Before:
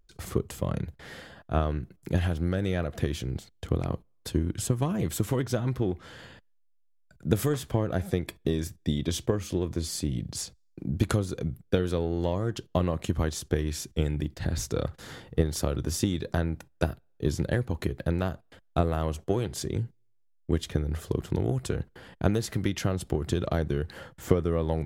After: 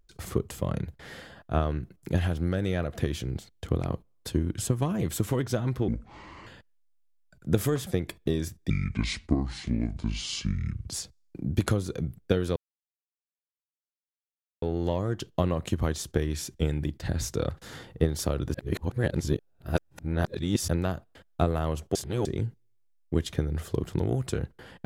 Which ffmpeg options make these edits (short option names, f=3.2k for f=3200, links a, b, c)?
-filter_complex "[0:a]asplit=11[a][b][c][d][e][f][g][h][i][j][k];[a]atrim=end=5.884[l];[b]atrim=start=5.88:end=6.25,asetpts=PTS-STARTPTS,asetrate=27783,aresample=44100[m];[c]atrim=start=6.246:end=7.652[n];[d]atrim=start=8.058:end=8.894[o];[e]atrim=start=8.89:end=10.31,asetpts=PTS-STARTPTS,asetrate=28665,aresample=44100[p];[f]atrim=start=10.306:end=11.99,asetpts=PTS-STARTPTS,afade=t=out:st=1.68:d=0.004:c=hsin,apad=pad_dur=2.06[q];[g]atrim=start=11.99:end=15.912,asetpts=PTS-STARTPTS,afade=t=in:d=0.004:c=hsin[r];[h]atrim=start=15.908:end=18.052,asetpts=PTS-STARTPTS,areverse[s];[i]atrim=start=18.048:end=19.322[t];[j]atrim=start=19.318:end=19.622,asetpts=PTS-STARTPTS,areverse[u];[k]atrim=start=19.618[v];[l][m]acrossfade=d=0.004:c1=hsin:c2=hsin[w];[w][n]acrossfade=d=0.004:c1=hsin:c2=hsin[x];[x][o]acrossfade=d=0.004:c1=hsin:c2=hsin[y];[y][p]acrossfade=d=0.004:c1=hsin:c2=hsin[z];[q][r]concat=n=2:v=0:a=1[aa];[z][aa]acrossfade=d=0.004:c1=hsin:c2=hsin[ab];[ab][s]acrossfade=d=0.004:c1=hsin:c2=hsin[ac];[ac][t]acrossfade=d=0.004:c1=hsin:c2=hsin[ad];[ad][u]acrossfade=d=0.004:c1=hsin:c2=hsin[ae];[ae][v]acrossfade=d=0.004:c1=hsin:c2=hsin"